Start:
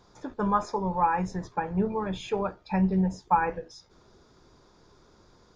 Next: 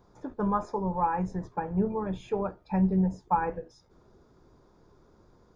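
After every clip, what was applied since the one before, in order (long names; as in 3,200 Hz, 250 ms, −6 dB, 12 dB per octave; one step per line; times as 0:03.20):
parametric band 4,300 Hz −12 dB 2.9 octaves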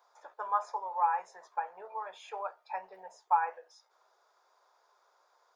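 inverse Chebyshev high-pass filter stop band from 260 Hz, stop band 50 dB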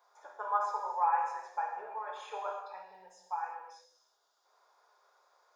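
gain on a spectral selection 0:02.52–0:04.45, 330–2,700 Hz −9 dB
reverb whose tail is shaped and stops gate 380 ms falling, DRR −0.5 dB
level −2.5 dB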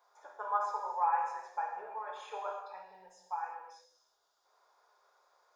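low-shelf EQ 180 Hz +5.5 dB
level −1.5 dB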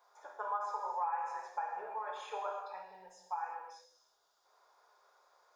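downward compressor 3 to 1, threshold −36 dBFS, peak gain reduction 8.5 dB
level +1.5 dB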